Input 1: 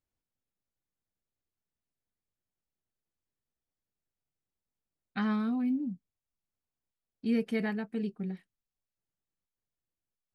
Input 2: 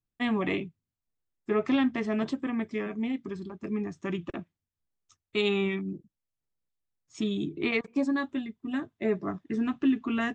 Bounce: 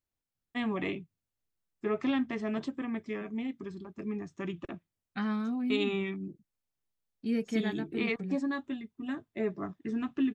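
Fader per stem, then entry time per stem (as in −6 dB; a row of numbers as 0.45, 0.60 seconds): −2.0, −4.5 decibels; 0.00, 0.35 seconds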